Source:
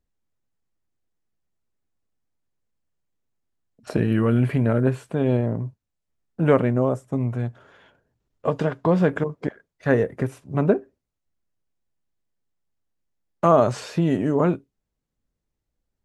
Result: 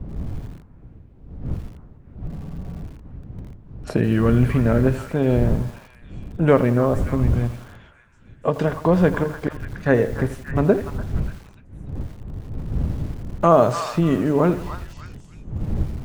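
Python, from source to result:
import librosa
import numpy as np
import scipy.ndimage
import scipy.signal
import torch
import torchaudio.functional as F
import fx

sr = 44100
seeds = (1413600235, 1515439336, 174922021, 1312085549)

y = fx.dmg_wind(x, sr, seeds[0], corner_hz=120.0, level_db=-31.0)
y = fx.echo_stepped(y, sr, ms=293, hz=1200.0, octaves=0.7, feedback_pct=70, wet_db=-8.0)
y = fx.spec_freeze(y, sr, seeds[1], at_s=2.3, hold_s=0.53)
y = fx.echo_crushed(y, sr, ms=83, feedback_pct=55, bits=6, wet_db=-14.0)
y = y * librosa.db_to_amplitude(2.0)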